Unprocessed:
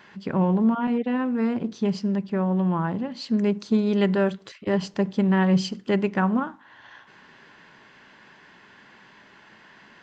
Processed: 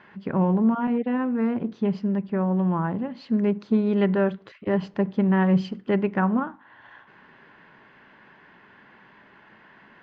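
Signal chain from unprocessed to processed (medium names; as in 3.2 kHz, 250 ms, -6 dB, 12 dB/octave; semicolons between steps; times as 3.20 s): low-pass 2.3 kHz 12 dB/octave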